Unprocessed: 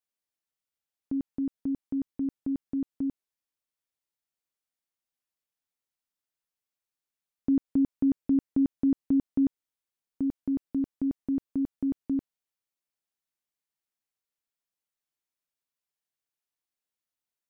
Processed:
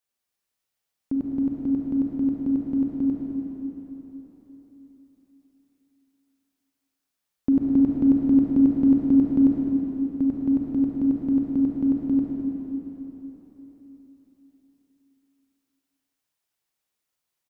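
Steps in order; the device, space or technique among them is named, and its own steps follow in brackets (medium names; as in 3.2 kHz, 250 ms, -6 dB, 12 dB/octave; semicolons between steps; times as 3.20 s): cave (delay 206 ms -13 dB; reverberation RT60 4.1 s, pre-delay 34 ms, DRR -2 dB); trim +4.5 dB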